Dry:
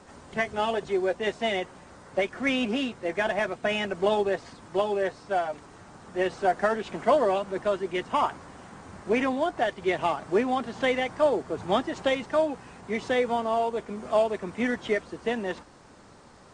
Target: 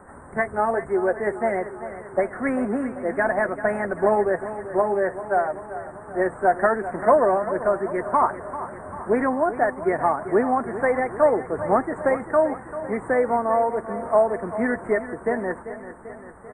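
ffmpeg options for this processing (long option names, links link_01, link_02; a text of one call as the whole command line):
ffmpeg -i in.wav -af "asuperstop=centerf=4200:order=12:qfactor=0.61,equalizer=frequency=210:width=0.39:gain=-3.5,aecho=1:1:391|782|1173|1564|1955|2346|2737:0.224|0.134|0.0806|0.0484|0.029|0.0174|0.0104,volume=6.5dB" out.wav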